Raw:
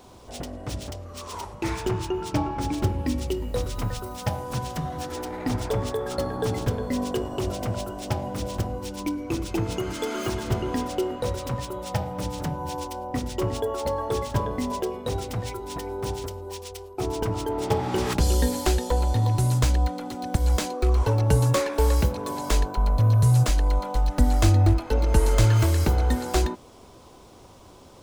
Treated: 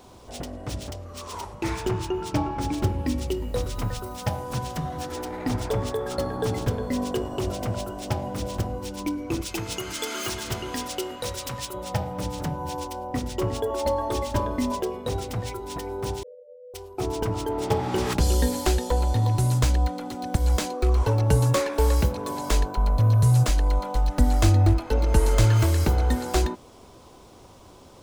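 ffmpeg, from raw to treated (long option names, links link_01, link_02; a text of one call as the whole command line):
ffmpeg -i in.wav -filter_complex "[0:a]asettb=1/sr,asplit=3[link_01][link_02][link_03];[link_01]atrim=end=9.414[link_04];[link_02]atrim=start=9.41:end=11.74,asetpts=PTS-STARTPTS,afade=type=in:duration=0.004:curve=qsin,afade=type=out:start_time=2.326:duration=0.004:curve=qsin,tiltshelf=frequency=1300:gain=-7[link_05];[link_03]atrim=start=11.736[link_06];[link_04][link_05]acrossfade=duration=0.004:curve1=hsin:curve2=qsin[link_07];[link_07][link_06]acrossfade=duration=0.004:curve1=qsin:curve2=hsin,asettb=1/sr,asplit=3[link_08][link_09][link_10];[link_08]atrim=end=13.704[link_11];[link_09]atrim=start=13.7:end=14.75,asetpts=PTS-STARTPTS,afade=type=in:duration=0.004:curve=qsin,afade=type=out:start_time=1.046:duration=0.004:curve=qsin,aecho=1:1:3.3:0.65,atrim=end_sample=46305[link_12];[link_10]atrim=start=14.746[link_13];[link_11][link_12]acrossfade=duration=0.004:curve1=hsin:curve2=qsin[link_14];[link_14][link_13]acrossfade=duration=0.004:curve1=qsin:curve2=hsin,asettb=1/sr,asplit=3[link_15][link_16][link_17];[link_15]atrim=end=16.234[link_18];[link_16]atrim=start=16.23:end=16.74,asetpts=PTS-STARTPTS,afade=type=in:duration=0.004:curve=qsin,afade=type=out:start_time=0.506:duration=0.004:curve=qsin,asuperpass=centerf=520:order=20:qfactor=3.3[link_19];[link_17]atrim=start=16.736[link_20];[link_18][link_19]acrossfade=duration=0.004:curve1=hsin:curve2=qsin[link_21];[link_21][link_20]acrossfade=duration=0.004:curve1=qsin:curve2=hsin" out.wav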